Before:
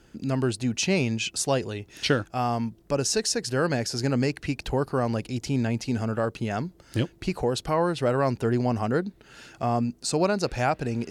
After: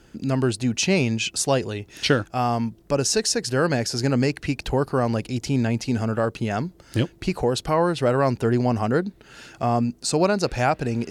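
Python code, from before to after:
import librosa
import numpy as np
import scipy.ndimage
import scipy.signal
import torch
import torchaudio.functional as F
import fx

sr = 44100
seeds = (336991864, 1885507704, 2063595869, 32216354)

y = F.gain(torch.from_numpy(x), 3.5).numpy()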